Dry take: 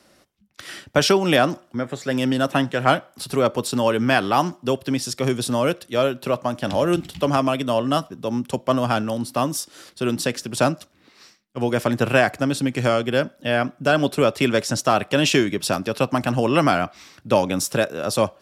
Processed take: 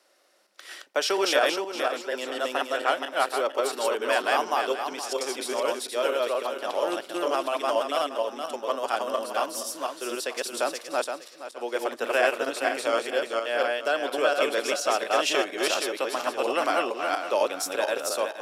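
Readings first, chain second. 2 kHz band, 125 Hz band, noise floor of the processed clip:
-3.5 dB, under -35 dB, -49 dBFS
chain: backward echo that repeats 235 ms, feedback 49%, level 0 dB; high-pass 390 Hz 24 dB/octave; trim -7 dB

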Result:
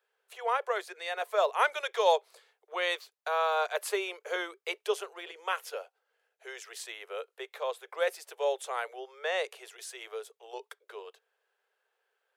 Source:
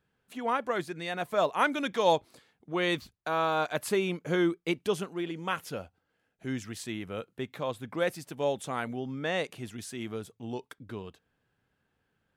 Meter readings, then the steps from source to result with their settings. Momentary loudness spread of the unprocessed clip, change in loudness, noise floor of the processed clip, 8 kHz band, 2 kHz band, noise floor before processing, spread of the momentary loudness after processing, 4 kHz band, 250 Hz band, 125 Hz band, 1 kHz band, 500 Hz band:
13 LU, -1.0 dB, -82 dBFS, 0.0 dB, 0.0 dB, -78 dBFS, 17 LU, 0.0 dB, -18.5 dB, under -40 dB, 0.0 dB, -1.0 dB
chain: steep high-pass 400 Hz 96 dB/octave

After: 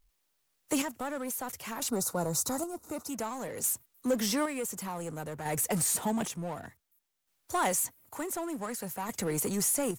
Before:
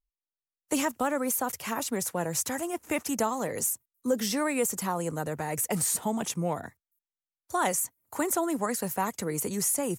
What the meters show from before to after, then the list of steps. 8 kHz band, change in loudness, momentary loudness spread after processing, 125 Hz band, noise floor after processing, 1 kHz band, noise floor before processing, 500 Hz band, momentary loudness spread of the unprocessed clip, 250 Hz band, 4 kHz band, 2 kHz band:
-2.0 dB, -2.5 dB, 11 LU, -2.0 dB, -77 dBFS, -4.5 dB, under -85 dBFS, -4.0 dB, 6 LU, -3.0 dB, -1.0 dB, -4.5 dB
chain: square tremolo 0.55 Hz, depth 65%, duty 45%; power-law waveshaper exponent 0.7; time-frequency box 1.89–3.09 s, 1.5–3.6 kHz -13 dB; trim -4 dB

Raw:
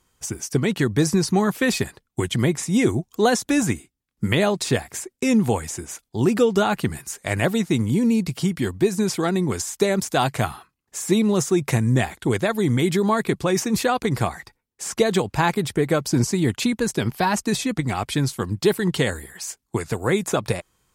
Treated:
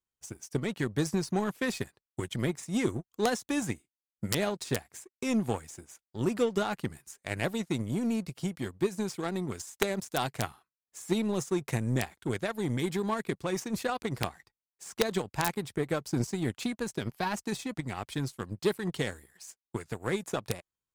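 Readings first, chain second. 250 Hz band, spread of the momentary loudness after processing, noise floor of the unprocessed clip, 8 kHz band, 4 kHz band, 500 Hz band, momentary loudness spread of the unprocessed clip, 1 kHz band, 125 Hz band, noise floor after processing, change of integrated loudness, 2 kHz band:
-11.0 dB, 9 LU, -75 dBFS, -12.0 dB, -10.0 dB, -10.5 dB, 9 LU, -10.5 dB, -11.5 dB, under -85 dBFS, -10.5 dB, -10.0 dB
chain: power-law waveshaper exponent 1.4; integer overflow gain 7.5 dB; trim -7 dB

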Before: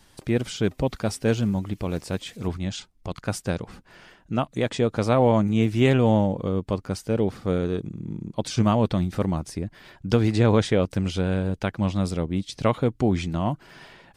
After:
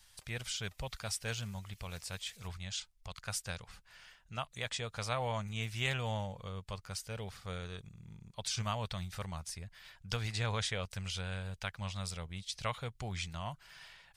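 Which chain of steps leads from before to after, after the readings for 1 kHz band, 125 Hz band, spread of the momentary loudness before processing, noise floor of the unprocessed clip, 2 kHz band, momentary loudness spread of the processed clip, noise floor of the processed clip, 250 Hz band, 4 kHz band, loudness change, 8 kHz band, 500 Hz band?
-12.5 dB, -15.0 dB, 13 LU, -58 dBFS, -6.5 dB, 12 LU, -66 dBFS, -24.5 dB, -4.0 dB, -15.0 dB, -2.5 dB, -20.0 dB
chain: amplifier tone stack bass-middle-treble 10-0-10; trim -2 dB

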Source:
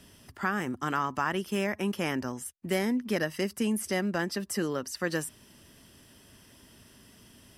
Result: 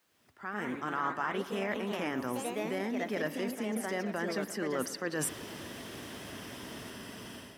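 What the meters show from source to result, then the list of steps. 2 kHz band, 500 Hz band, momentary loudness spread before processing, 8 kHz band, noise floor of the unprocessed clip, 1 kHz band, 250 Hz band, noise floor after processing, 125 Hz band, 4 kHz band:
-3.5 dB, -2.5 dB, 5 LU, -2.0 dB, -57 dBFS, -3.0 dB, -5.0 dB, -59 dBFS, -6.5 dB, -3.5 dB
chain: fade-in on the opening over 1.61 s; word length cut 12-bit, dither triangular; ever faster or slower copies 147 ms, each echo +2 st, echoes 3, each echo -6 dB; treble shelf 3.5 kHz -12 dB; peak limiter -22 dBFS, peak gain reduction 6.5 dB; reverse; compression 10:1, threshold -44 dBFS, peak gain reduction 18 dB; reverse; high-pass 55 Hz; bass shelf 200 Hz -12 dB; level rider gain up to 10.5 dB; on a send: bucket-brigade echo 116 ms, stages 4096, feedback 80%, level -17.5 dB; on the sum: trim +5.5 dB

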